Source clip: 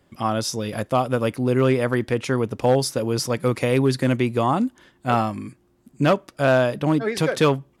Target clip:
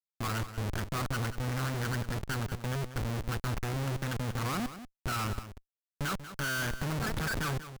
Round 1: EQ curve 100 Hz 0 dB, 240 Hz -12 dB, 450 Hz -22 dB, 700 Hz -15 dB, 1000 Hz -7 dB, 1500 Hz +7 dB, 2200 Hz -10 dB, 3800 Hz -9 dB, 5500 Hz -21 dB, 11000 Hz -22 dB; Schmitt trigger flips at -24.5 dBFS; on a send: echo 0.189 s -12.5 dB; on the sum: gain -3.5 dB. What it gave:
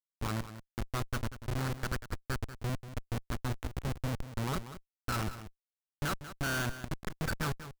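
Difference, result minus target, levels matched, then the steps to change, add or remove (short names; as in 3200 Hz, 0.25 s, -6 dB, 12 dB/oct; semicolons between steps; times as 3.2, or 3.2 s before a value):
Schmitt trigger: distortion +5 dB
change: Schmitt trigger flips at -32 dBFS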